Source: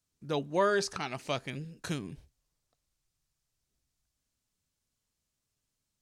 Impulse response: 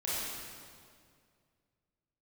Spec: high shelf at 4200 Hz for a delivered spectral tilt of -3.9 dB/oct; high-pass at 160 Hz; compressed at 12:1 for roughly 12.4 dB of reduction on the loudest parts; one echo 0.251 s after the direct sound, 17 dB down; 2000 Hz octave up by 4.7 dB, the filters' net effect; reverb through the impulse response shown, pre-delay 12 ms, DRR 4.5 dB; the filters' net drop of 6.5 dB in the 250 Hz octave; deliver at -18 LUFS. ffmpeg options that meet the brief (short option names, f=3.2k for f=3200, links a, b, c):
-filter_complex "[0:a]highpass=160,equalizer=f=250:t=o:g=-9,equalizer=f=2k:t=o:g=7.5,highshelf=f=4.2k:g=-4.5,acompressor=threshold=-34dB:ratio=12,aecho=1:1:251:0.141,asplit=2[a][b];[1:a]atrim=start_sample=2205,adelay=12[c];[b][c]afir=irnorm=-1:irlink=0,volume=-10.5dB[d];[a][d]amix=inputs=2:normalize=0,volume=21.5dB"